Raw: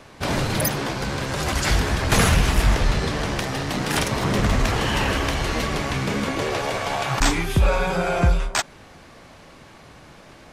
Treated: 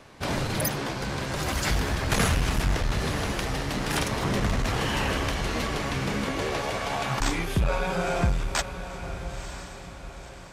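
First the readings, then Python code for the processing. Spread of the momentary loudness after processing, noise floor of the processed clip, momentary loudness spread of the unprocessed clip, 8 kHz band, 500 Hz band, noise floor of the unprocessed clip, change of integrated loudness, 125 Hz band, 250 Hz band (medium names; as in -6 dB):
11 LU, -42 dBFS, 6 LU, -5.0 dB, -5.0 dB, -47 dBFS, -5.5 dB, -5.0 dB, -4.5 dB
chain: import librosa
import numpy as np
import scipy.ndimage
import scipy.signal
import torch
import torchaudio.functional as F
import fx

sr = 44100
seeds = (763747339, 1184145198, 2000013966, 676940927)

p1 = x + fx.echo_diffused(x, sr, ms=970, feedback_pct=43, wet_db=-11, dry=0)
p2 = fx.transformer_sat(p1, sr, knee_hz=140.0)
y = p2 * librosa.db_to_amplitude(-4.5)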